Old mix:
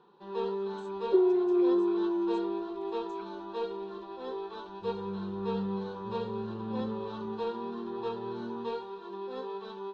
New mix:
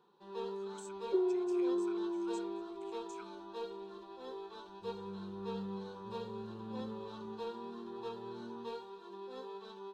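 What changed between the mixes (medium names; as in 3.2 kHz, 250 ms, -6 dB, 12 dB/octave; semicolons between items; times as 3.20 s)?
first sound -8.5 dB; second sound -8.0 dB; master: remove distance through air 150 m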